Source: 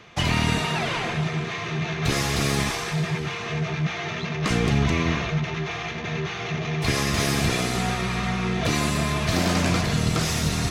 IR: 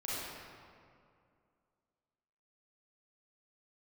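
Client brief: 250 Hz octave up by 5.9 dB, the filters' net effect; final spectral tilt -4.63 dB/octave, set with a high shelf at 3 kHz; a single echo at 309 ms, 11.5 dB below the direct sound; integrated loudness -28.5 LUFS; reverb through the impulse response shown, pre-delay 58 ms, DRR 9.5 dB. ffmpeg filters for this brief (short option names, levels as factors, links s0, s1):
-filter_complex "[0:a]equalizer=f=250:t=o:g=8.5,highshelf=f=3000:g=5.5,aecho=1:1:309:0.266,asplit=2[s0][s1];[1:a]atrim=start_sample=2205,adelay=58[s2];[s1][s2]afir=irnorm=-1:irlink=0,volume=0.211[s3];[s0][s3]amix=inputs=2:normalize=0,volume=0.376"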